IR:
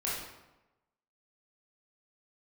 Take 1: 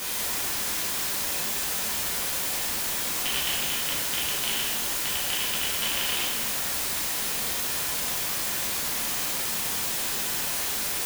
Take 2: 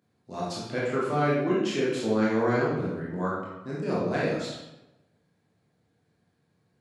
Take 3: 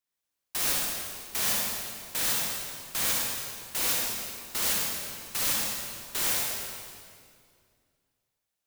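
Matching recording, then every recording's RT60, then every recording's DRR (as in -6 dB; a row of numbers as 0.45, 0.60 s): 2; 1.4, 1.0, 2.2 s; -6.5, -7.0, -3.5 dB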